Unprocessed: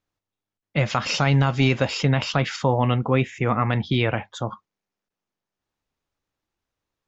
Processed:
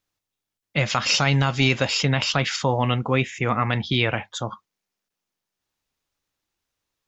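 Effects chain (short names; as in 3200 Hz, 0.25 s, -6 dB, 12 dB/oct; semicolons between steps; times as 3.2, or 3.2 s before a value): high shelf 2000 Hz +9.5 dB; gain -2 dB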